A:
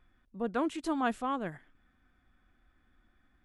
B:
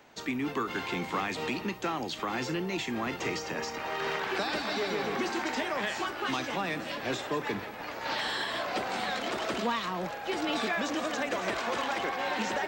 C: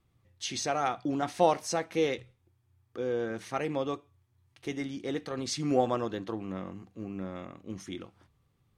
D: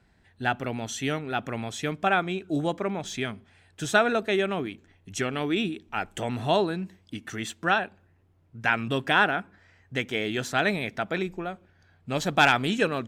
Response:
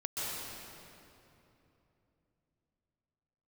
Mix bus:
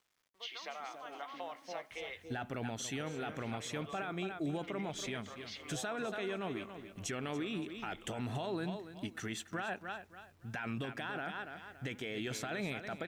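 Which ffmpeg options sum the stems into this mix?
-filter_complex "[0:a]lowshelf=f=84:g=-11,acompressor=threshold=-47dB:ratio=2,volume=-7.5dB,asplit=2[a][b];[b]volume=-14.5dB[c];[2:a]highpass=f=160:w=0.5412,highpass=f=160:w=1.3066,equalizer=f=620:w=5:g=7,volume=-9.5dB,asplit=2[d][e];[e]volume=-15dB[f];[3:a]adelay=1900,volume=-3dB,asplit=2[g][h];[h]volume=-15dB[i];[a][d]amix=inputs=2:normalize=0,highpass=f=480:w=0.5412,highpass=f=480:w=1.3066,equalizer=f=580:t=q:w=4:g=-7,equalizer=f=1.1k:t=q:w=4:g=6,equalizer=f=2.1k:t=q:w=4:g=9,equalizer=f=3.1k:t=q:w=4:g=10,lowpass=f=4.7k:w=0.5412,lowpass=f=4.7k:w=1.3066,acompressor=threshold=-41dB:ratio=6,volume=0dB[j];[g]alimiter=level_in=1.5dB:limit=-24dB:level=0:latency=1:release=14,volume=-1.5dB,volume=0dB[k];[c][f][i]amix=inputs=3:normalize=0,aecho=0:1:282|564|846|1128:1|0.23|0.0529|0.0122[l];[j][k][l]amix=inputs=3:normalize=0,acrusher=bits=11:mix=0:aa=0.000001,alimiter=level_in=5.5dB:limit=-24dB:level=0:latency=1:release=454,volume=-5.5dB"

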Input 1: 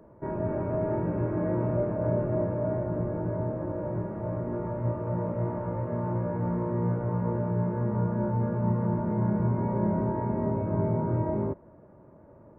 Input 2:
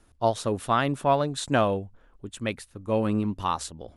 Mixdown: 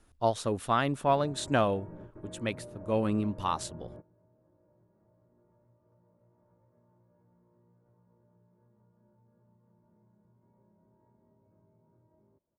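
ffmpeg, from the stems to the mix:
-filter_complex "[0:a]acompressor=threshold=-32dB:ratio=6,adelay=850,volume=-11dB[a];[1:a]volume=-3.5dB,asplit=2[b][c];[c]apad=whole_len=592518[d];[a][d]sidechaingate=range=-21dB:threshold=-57dB:ratio=16:detection=peak[e];[e][b]amix=inputs=2:normalize=0"

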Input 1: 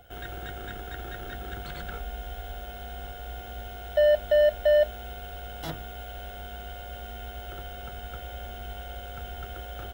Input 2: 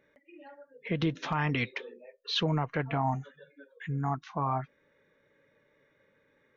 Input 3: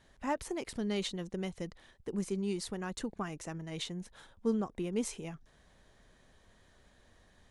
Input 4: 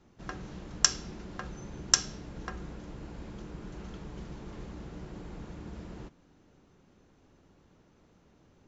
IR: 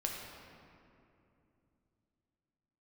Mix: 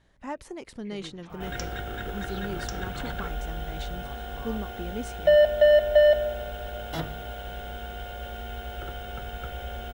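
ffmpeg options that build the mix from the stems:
-filter_complex "[0:a]adelay=1300,volume=2dB,asplit=2[a][b];[b]volume=-11.5dB[c];[1:a]aeval=exprs='val(0)+0.00224*(sin(2*PI*60*n/s)+sin(2*PI*2*60*n/s)/2+sin(2*PI*3*60*n/s)/3+sin(2*PI*4*60*n/s)/4+sin(2*PI*5*60*n/s)/5)':c=same,volume=-16.5dB[d];[2:a]volume=-1.5dB[e];[3:a]adelay=750,volume=-14dB[f];[4:a]atrim=start_sample=2205[g];[c][g]afir=irnorm=-1:irlink=0[h];[a][d][e][f][h]amix=inputs=5:normalize=0,highshelf=f=6k:g=-6.5"

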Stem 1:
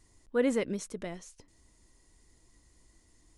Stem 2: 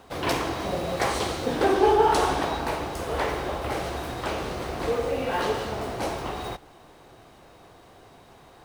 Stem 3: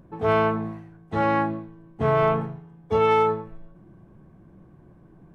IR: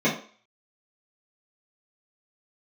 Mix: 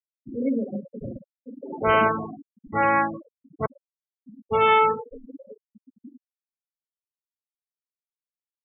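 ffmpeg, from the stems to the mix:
-filter_complex "[0:a]aeval=exprs='val(0)+0.002*(sin(2*PI*60*n/s)+sin(2*PI*2*60*n/s)/2+sin(2*PI*3*60*n/s)/3+sin(2*PI*4*60*n/s)/4+sin(2*PI*5*60*n/s)/5)':c=same,volume=-13.5dB,asplit=3[a][b][c];[b]volume=-7dB[d];[1:a]acrusher=samples=27:mix=1:aa=0.000001:lfo=1:lforange=43.2:lforate=1.2,asoftclip=type=hard:threshold=-12.5dB,volume=-10dB,asplit=2[e][f];[f]volume=-22dB[g];[2:a]tiltshelf=f=750:g=-7,adelay=1600,volume=1.5dB,asplit=3[h][i][j];[h]atrim=end=3.66,asetpts=PTS-STARTPTS,afade=t=out:st=3.656:d=0.004:c=hsin[k];[i]atrim=start=3.66:end=4.42,asetpts=PTS-STARTPTS,volume=0[l];[j]atrim=start=4.42,asetpts=PTS-STARTPTS,afade=t=in:d=0.004:c=hsin[m];[k][l][m]concat=n=3:v=0:a=1[n];[c]apad=whole_len=381382[o];[e][o]sidechaingate=range=-6dB:threshold=-57dB:ratio=16:detection=peak[p];[3:a]atrim=start_sample=2205[q];[d][g]amix=inputs=2:normalize=0[r];[r][q]afir=irnorm=-1:irlink=0[s];[a][p][n][s]amix=inputs=4:normalize=0,afftfilt=real='re*gte(hypot(re,im),0.0891)':imag='im*gte(hypot(re,im),0.0891)':win_size=1024:overlap=0.75"

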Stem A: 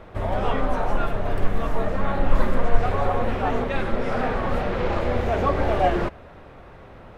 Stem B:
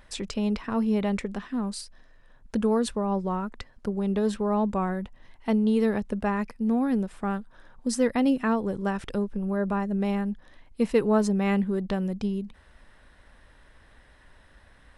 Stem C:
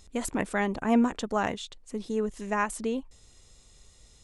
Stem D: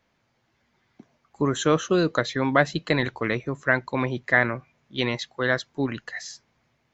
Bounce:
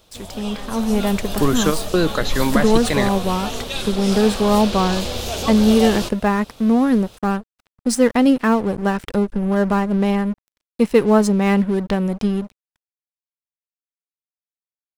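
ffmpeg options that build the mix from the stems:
-filter_complex "[0:a]aexciter=amount=11.7:drive=6.5:freq=3k,volume=-14dB[a];[1:a]aeval=exprs='sgn(val(0))*max(abs(val(0))-0.00794,0)':c=same,volume=0dB[b];[2:a]volume=-16dB,asplit=2[c][d];[3:a]alimiter=limit=-12dB:level=0:latency=1,volume=-4.5dB[e];[d]apad=whole_len=305906[f];[e][f]sidechaingate=range=-33dB:threshold=-59dB:ratio=16:detection=peak[g];[a][b][c][g]amix=inputs=4:normalize=0,highshelf=f=8.5k:g=4.5,dynaudnorm=f=170:g=11:m=11dB"

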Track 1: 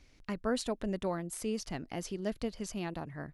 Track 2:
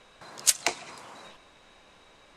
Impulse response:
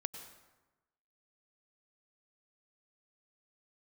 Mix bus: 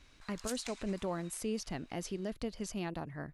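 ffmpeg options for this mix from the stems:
-filter_complex "[0:a]volume=-0.5dB[a];[1:a]highpass=1.4k,volume=-8.5dB[b];[a][b]amix=inputs=2:normalize=0,alimiter=level_in=2.5dB:limit=-24dB:level=0:latency=1:release=72,volume=-2.5dB"

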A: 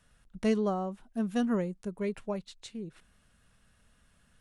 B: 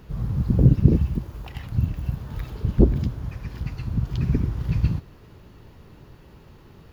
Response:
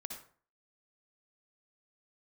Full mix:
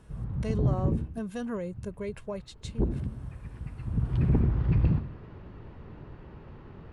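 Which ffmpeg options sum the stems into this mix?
-filter_complex "[0:a]aecho=1:1:1.9:0.38,alimiter=level_in=3dB:limit=-24dB:level=0:latency=1:release=68,volume=-3dB,volume=0.5dB[a];[1:a]lowpass=2.1k,volume=10.5dB,afade=t=out:st=0.9:d=0.23:silence=0.266073,afade=t=in:st=2.61:d=0.26:silence=0.281838,afade=t=in:st=3.75:d=0.54:silence=0.298538,asplit=2[b][c];[c]volume=-4dB[d];[2:a]atrim=start_sample=2205[e];[d][e]afir=irnorm=-1:irlink=0[f];[a][b][f]amix=inputs=3:normalize=0,asoftclip=type=tanh:threshold=-16.5dB"

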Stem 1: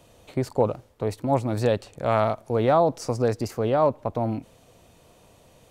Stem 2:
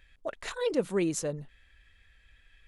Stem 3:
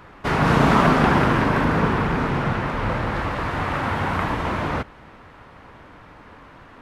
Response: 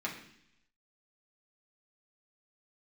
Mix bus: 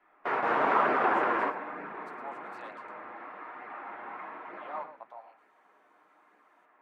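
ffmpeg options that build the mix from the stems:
-filter_complex "[0:a]highpass=f=760:w=0.5412,highpass=f=760:w=1.3066,adelay=950,volume=-9dB,asplit=3[a][b][c];[a]atrim=end=2.92,asetpts=PTS-STARTPTS,afade=t=out:st=2.916:d=0.004:c=hsin[d];[b]atrim=start=2.92:end=4.53,asetpts=PTS-STARTPTS,volume=0[e];[c]atrim=start=4.53,asetpts=PTS-STARTPTS,afade=t=in:d=0.004:c=hsin[f];[d][e][f]concat=n=3:v=0:a=1,asplit=2[g][h];[h]volume=-11.5dB[i];[1:a]acompressor=threshold=-36dB:ratio=6,volume=-10dB,asplit=2[j][k];[2:a]highpass=200,highshelf=f=3.3k:g=-10,volume=-2dB,asplit=2[l][m];[m]volume=-12.5dB[n];[k]apad=whole_len=300675[o];[l][o]sidechaingate=range=-33dB:threshold=-59dB:ratio=16:detection=peak[p];[3:a]atrim=start_sample=2205[q];[n][q]afir=irnorm=-1:irlink=0[r];[i]aecho=0:1:112:1[s];[g][j][p][r][s]amix=inputs=5:normalize=0,acrossover=split=380 2600:gain=0.0794 1 0.2[t][u][v];[t][u][v]amix=inputs=3:normalize=0,flanger=delay=0.4:depth=8.3:regen=-44:speed=1.1:shape=sinusoidal"

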